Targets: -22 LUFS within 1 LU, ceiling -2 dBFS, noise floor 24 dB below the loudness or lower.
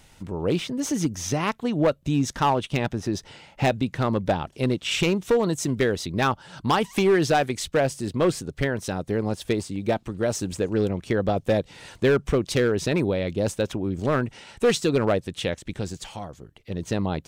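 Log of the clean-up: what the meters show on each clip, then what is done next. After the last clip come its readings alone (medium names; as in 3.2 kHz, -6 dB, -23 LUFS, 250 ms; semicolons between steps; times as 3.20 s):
clipped samples 1.2%; clipping level -14.0 dBFS; loudness -25.0 LUFS; peak level -14.0 dBFS; loudness target -22.0 LUFS
-> clip repair -14 dBFS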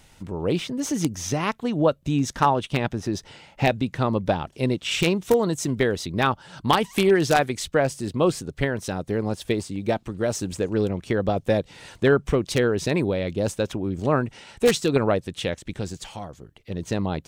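clipped samples 0.0%; loudness -24.0 LUFS; peak level -5.0 dBFS; loudness target -22.0 LUFS
-> trim +2 dB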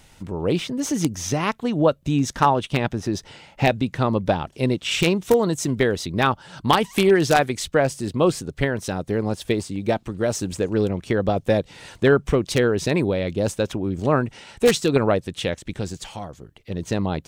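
loudness -22.0 LUFS; peak level -3.0 dBFS; noise floor -53 dBFS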